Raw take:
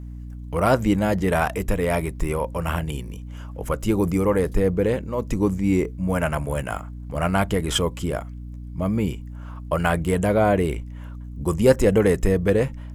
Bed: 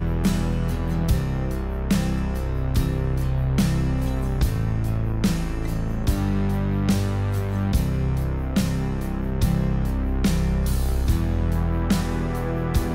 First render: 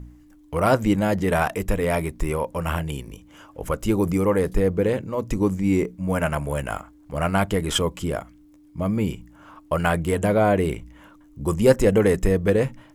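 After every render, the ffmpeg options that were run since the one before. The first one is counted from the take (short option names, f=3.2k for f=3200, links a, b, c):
-af "bandreject=f=60:t=h:w=4,bandreject=f=120:t=h:w=4,bandreject=f=180:t=h:w=4,bandreject=f=240:t=h:w=4"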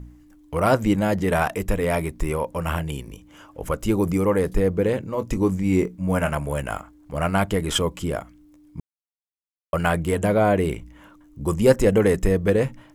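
-filter_complex "[0:a]asettb=1/sr,asplit=3[a][b][c];[a]atrim=end=5.114[d];[b]atrim=start=5.11:end=6.31,asetpts=PTS-STARTPTS,afade=t=in:d=0.004:c=qsin,afade=t=out:st=1.196:d=0.004:c=qsin,asplit=2[e][f];[f]adelay=22,volume=-11dB[g];[e][g]amix=inputs=2:normalize=0,atrim=end_sample=52920[h];[c]atrim=start=6.306[i];[d][h]acrossfade=d=0.004:c1=hsin:c2=qsin[j];[j][i]acrossfade=d=0.004:c1=qsin:c2=hsin,asplit=3[k][l][m];[k]atrim=end=8.8,asetpts=PTS-STARTPTS,afade=t=out:st=8.796:d=0.004:c=hsin[n];[l]atrim=start=8.8:end=9.73,asetpts=PTS-STARTPTS,volume=0[o];[m]atrim=start=9.73,asetpts=PTS-STARTPTS,afade=t=in:d=0.004:c=hsin[p];[n][o][p]concat=n=3:v=0:a=1"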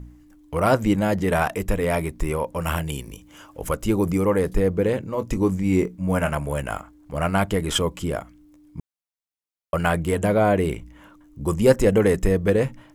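-filter_complex "[0:a]asettb=1/sr,asplit=3[a][b][c];[a]atrim=end=2.604[d];[b]atrim=start=2.6:end=3.76,asetpts=PTS-STARTPTS,afade=t=in:d=0.004:c=qsin,afade=t=out:st=1.156:d=0.004:c=qsin,highshelf=f=3.5k:g=6.5[e];[c]atrim=start=3.756[f];[d][e]acrossfade=d=0.004:c1=hsin:c2=qsin[g];[g][f]acrossfade=d=0.004:c1=qsin:c2=hsin"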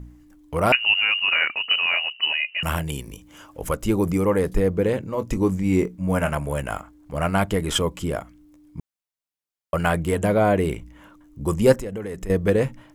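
-filter_complex "[0:a]asettb=1/sr,asplit=3[a][b][c];[a]atrim=end=0.724[d];[b]atrim=start=0.72:end=2.63,asetpts=PTS-STARTPTS,afade=t=in:d=0.004:c=qsin,afade=t=out:st=1.906:d=0.004:c=qsin,lowpass=f=2.6k:t=q:w=0.5098,lowpass=f=2.6k:t=q:w=0.6013,lowpass=f=2.6k:t=q:w=0.9,lowpass=f=2.6k:t=q:w=2.563,afreqshift=-3000[e];[c]atrim=start=2.626[f];[d][e]acrossfade=d=0.004:c1=hsin:c2=qsin[g];[g][f]acrossfade=d=0.004:c1=qsin:c2=hsin,asettb=1/sr,asplit=3[h][i][j];[h]atrim=end=11.764[k];[i]atrim=start=11.76:end=12.3,asetpts=PTS-STARTPTS,afade=t=in:d=0.004:c=qsin,afade=t=out:st=0.536:d=0.004:c=qsin,acompressor=threshold=-30dB:ratio=4:attack=3.2:release=140:knee=1:detection=peak[l];[j]atrim=start=12.296[m];[k][l]acrossfade=d=0.004:c1=hsin:c2=qsin[n];[n][m]acrossfade=d=0.004:c1=qsin:c2=hsin"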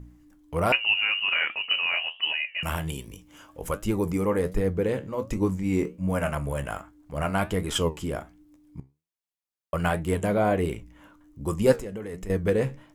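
-af "flanger=delay=9:depth=6.4:regen=71:speed=1.3:shape=triangular"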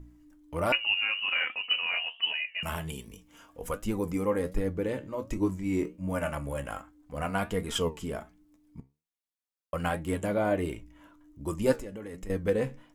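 -af "flanger=delay=3:depth=1.7:regen=47:speed=0.18:shape=triangular"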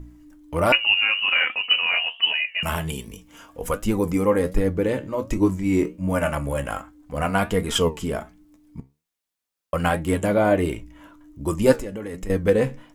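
-af "volume=8.5dB"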